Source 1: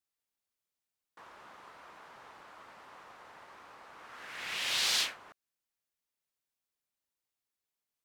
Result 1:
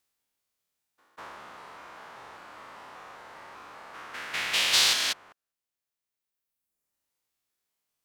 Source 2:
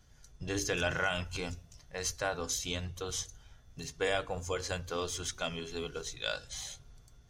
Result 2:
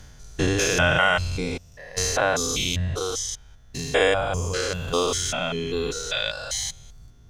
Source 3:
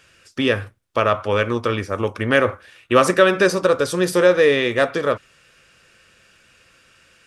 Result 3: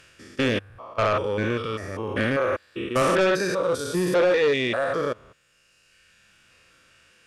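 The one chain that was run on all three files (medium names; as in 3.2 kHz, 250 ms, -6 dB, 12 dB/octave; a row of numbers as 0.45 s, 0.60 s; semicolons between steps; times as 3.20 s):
spectrogram pixelated in time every 200 ms; reverb removal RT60 1.6 s; in parallel at -11.5 dB: sine folder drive 10 dB, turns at -7.5 dBFS; on the sum: normalise loudness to -24 LUFS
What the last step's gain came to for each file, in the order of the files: +5.5 dB, +10.5 dB, -5.0 dB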